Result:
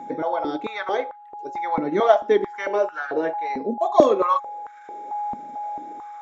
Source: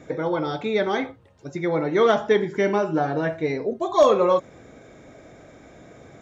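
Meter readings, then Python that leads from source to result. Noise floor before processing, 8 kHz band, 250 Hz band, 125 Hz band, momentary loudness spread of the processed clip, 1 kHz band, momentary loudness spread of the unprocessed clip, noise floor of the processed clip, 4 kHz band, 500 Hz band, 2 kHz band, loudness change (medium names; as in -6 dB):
-50 dBFS, no reading, -2.0 dB, -11.0 dB, 17 LU, +4.0 dB, 9 LU, -45 dBFS, -4.5 dB, -0.5 dB, -1.5 dB, -1.0 dB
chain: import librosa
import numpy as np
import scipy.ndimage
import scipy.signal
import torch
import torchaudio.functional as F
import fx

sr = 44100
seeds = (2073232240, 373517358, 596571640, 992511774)

y = fx.transient(x, sr, attack_db=-1, sustain_db=-6)
y = y + 10.0 ** (-31.0 / 20.0) * np.sin(2.0 * np.pi * 830.0 * np.arange(len(y)) / sr)
y = fx.filter_held_highpass(y, sr, hz=4.5, low_hz=230.0, high_hz=1500.0)
y = y * librosa.db_to_amplitude(-4.0)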